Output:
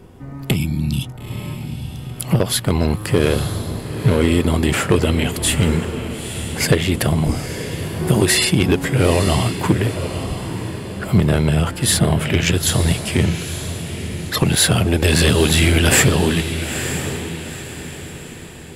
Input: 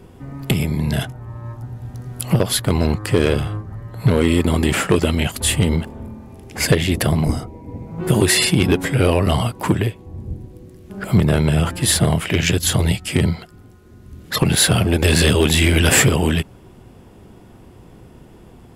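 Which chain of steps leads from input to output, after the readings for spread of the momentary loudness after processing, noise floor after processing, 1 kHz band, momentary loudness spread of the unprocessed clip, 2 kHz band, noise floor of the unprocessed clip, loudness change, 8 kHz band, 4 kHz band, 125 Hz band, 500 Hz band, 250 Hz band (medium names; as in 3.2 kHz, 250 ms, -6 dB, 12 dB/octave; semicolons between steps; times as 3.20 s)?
15 LU, -33 dBFS, +0.5 dB, 18 LU, +0.5 dB, -45 dBFS, -0.5 dB, +0.5 dB, +0.5 dB, +0.5 dB, +0.5 dB, +0.5 dB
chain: spectral replace 0.59–1.06 s, 360–2200 Hz after; echo that smears into a reverb 918 ms, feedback 41%, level -9 dB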